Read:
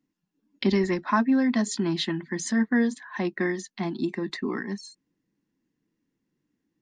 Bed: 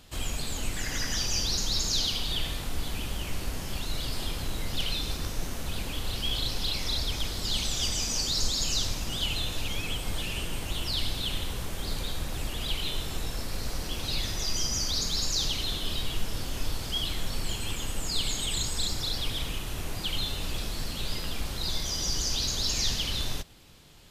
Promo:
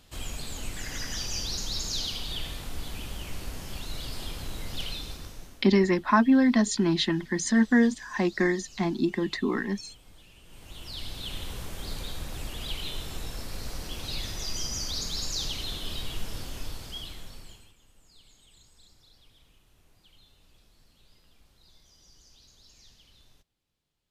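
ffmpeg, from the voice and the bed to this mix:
-filter_complex "[0:a]adelay=5000,volume=2dB[a];[1:a]volume=14.5dB,afade=t=out:st=4.83:d=0.83:silence=0.125893,afade=t=in:st=10.43:d=1.1:silence=0.11885,afade=t=out:st=16.34:d=1.39:silence=0.0562341[b];[a][b]amix=inputs=2:normalize=0"

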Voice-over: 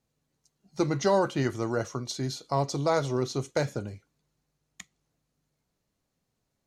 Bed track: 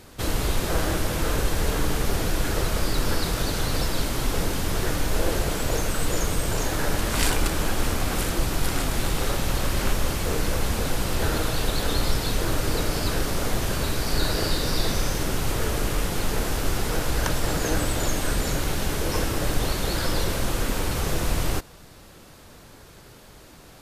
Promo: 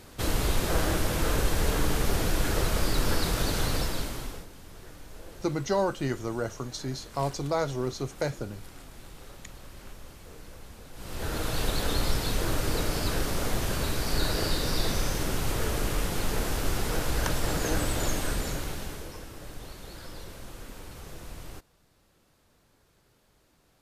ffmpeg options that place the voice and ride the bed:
-filter_complex "[0:a]adelay=4650,volume=-2.5dB[a];[1:a]volume=16.5dB,afade=t=out:st=3.64:d=0.82:silence=0.1,afade=t=in:st=10.93:d=0.68:silence=0.11885,afade=t=out:st=18.11:d=1.06:silence=0.188365[b];[a][b]amix=inputs=2:normalize=0"

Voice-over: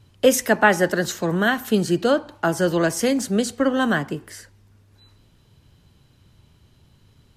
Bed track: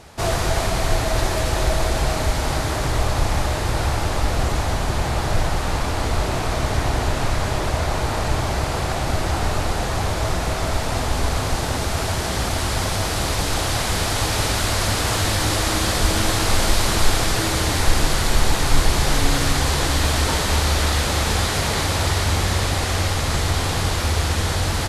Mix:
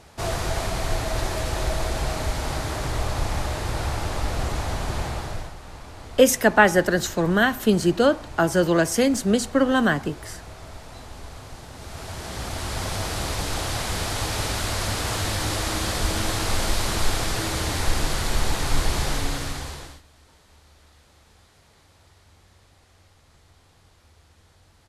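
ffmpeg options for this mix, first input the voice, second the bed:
-filter_complex "[0:a]adelay=5950,volume=0.5dB[a];[1:a]volume=7.5dB,afade=t=out:st=5:d=0.54:silence=0.223872,afade=t=in:st=11.73:d=1.23:silence=0.223872,afade=t=out:st=19:d=1.02:silence=0.0316228[b];[a][b]amix=inputs=2:normalize=0"

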